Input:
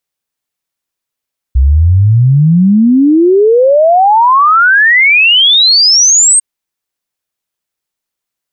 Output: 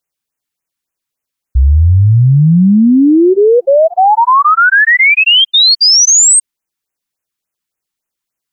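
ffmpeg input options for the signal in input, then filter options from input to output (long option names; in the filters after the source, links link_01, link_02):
-f lavfi -i "aevalsrc='0.668*clip(min(t,4.85-t)/0.01,0,1)*sin(2*PI*62*4.85/log(8600/62)*(exp(log(8600/62)*t/4.85)-1))':duration=4.85:sample_rate=44100"
-af "afftfilt=real='re*(1-between(b*sr/1024,500*pow(4500/500,0.5+0.5*sin(2*PI*3.5*pts/sr))/1.41,500*pow(4500/500,0.5+0.5*sin(2*PI*3.5*pts/sr))*1.41))':imag='im*(1-between(b*sr/1024,500*pow(4500/500,0.5+0.5*sin(2*PI*3.5*pts/sr))/1.41,500*pow(4500/500,0.5+0.5*sin(2*PI*3.5*pts/sr))*1.41))':win_size=1024:overlap=0.75"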